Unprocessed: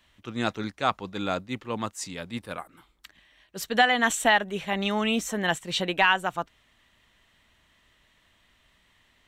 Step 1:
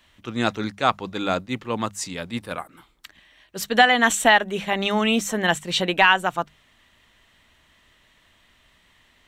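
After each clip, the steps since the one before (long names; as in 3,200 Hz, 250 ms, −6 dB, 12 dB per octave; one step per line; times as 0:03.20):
mains-hum notches 50/100/150/200 Hz
level +5 dB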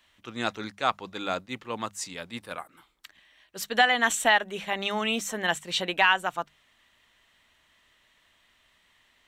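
low-shelf EQ 360 Hz −8 dB
level −4.5 dB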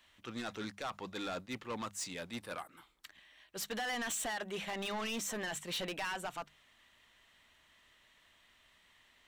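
brickwall limiter −19 dBFS, peak gain reduction 11.5 dB
soft clipping −32 dBFS, distortion −7 dB
level −2 dB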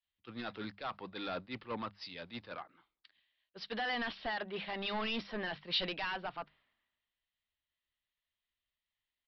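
downsampling to 11,025 Hz
multiband upward and downward expander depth 100%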